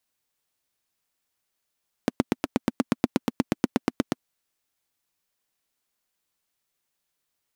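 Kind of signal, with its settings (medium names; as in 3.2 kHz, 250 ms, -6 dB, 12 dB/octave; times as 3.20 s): single-cylinder engine model, steady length 2.15 s, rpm 1000, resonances 250 Hz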